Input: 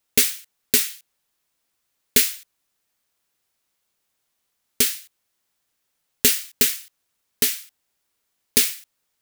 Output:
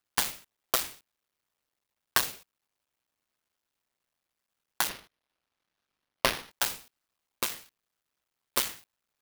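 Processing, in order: cycle switcher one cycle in 2, muted; tone controls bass +4 dB, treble -6 dB; 4.89–6.51 s: careless resampling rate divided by 6×, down none, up hold; ring modulator with a swept carrier 1.1 kHz, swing 30%, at 0.87 Hz

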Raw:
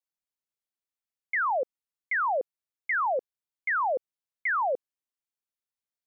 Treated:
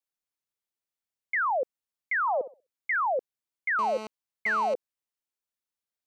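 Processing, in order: 2.21–2.96 s: flutter echo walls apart 10.9 m, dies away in 0.29 s; 3.79–4.74 s: mobile phone buzz -38 dBFS

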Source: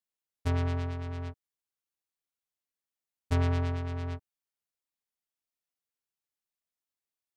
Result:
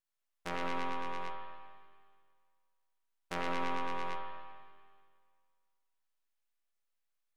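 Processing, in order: high-pass 670 Hz 12 dB/octave; treble shelf 2.9 kHz -5.5 dB; in parallel at +3 dB: peak limiter -30.5 dBFS, peak gain reduction 10 dB; on the sum: half-wave rectifier; spring tank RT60 1.9 s, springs 33/38/59 ms, chirp 40 ms, DRR 1.5 dB

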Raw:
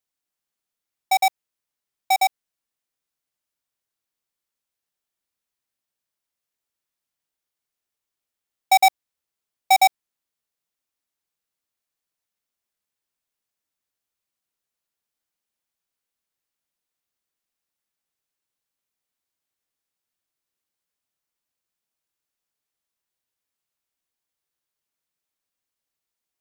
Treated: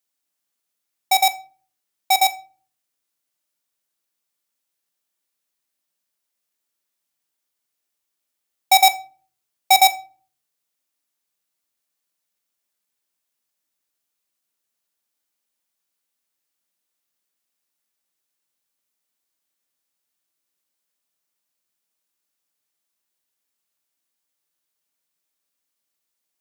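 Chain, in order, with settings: high-pass 120 Hz 12 dB/octave; treble shelf 4.3 kHz +5 dB; on a send: reverberation RT60 0.40 s, pre-delay 3 ms, DRR 10 dB; on the sum: trim +2 dB

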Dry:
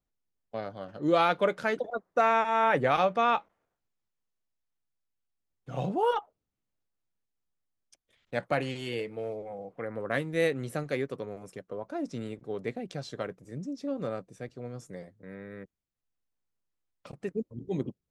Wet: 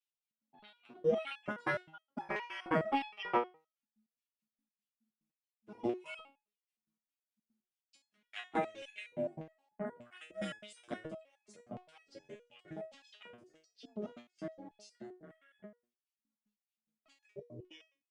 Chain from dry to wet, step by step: ring modulator 260 Hz; LFO high-pass square 1.7 Hz 250–3100 Hz; tremolo saw down 4.8 Hz, depth 90%; pitch shift -3 st; resonator arpeggio 9.6 Hz 120–840 Hz; trim +11 dB

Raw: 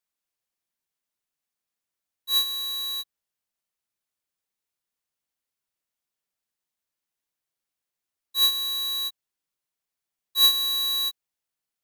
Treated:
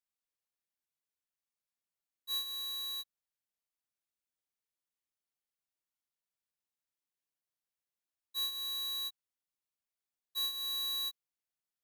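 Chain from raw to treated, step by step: compression 6:1, threshold -26 dBFS, peak gain reduction 10 dB; trim -9 dB

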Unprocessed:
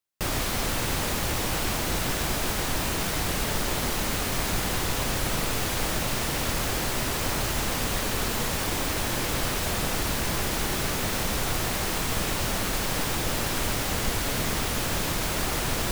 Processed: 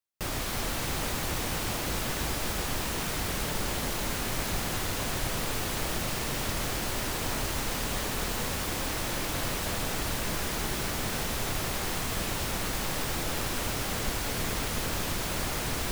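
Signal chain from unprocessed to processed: two-band feedback delay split 960 Hz, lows 347 ms, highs 263 ms, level -7 dB; trim -5 dB

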